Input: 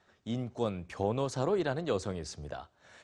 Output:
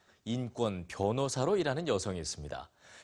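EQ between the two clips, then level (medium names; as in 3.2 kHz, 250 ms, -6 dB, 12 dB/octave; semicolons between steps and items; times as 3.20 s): treble shelf 4.7 kHz +9.5 dB; 0.0 dB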